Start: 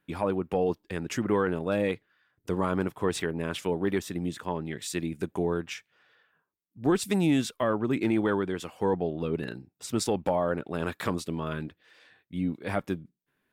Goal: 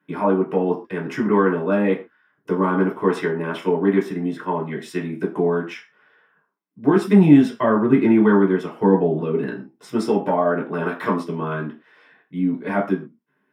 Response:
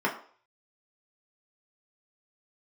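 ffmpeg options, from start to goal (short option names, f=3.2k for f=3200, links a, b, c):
-filter_complex "[0:a]asettb=1/sr,asplit=3[a][b][c];[a]atrim=end=6.964[d];[b]atrim=start=6.96:end=9.2,asetpts=PTS-STARTPTS,afade=t=in:d=0.004:c=qsin,afade=t=out:st=2.236:d=0.004:c=qsin,lowshelf=f=170:g=10[e];[c]atrim=start=9.196[f];[d][e]acrossfade=d=0.004:c1=hsin:c2=qsin[g];[g][f]acrossfade=d=0.004:c1=qsin:c2=hsin[h];[1:a]atrim=start_sample=2205,atrim=end_sample=6174[i];[h][i]afir=irnorm=-1:irlink=0,volume=-4.5dB"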